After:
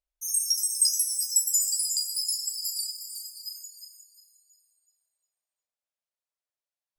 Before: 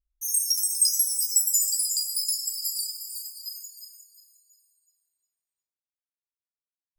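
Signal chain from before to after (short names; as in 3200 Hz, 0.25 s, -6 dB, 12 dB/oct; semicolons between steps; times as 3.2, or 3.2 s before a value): Bessel low-pass 11000 Hz, order 2; resonant low shelf 400 Hz -12 dB, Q 3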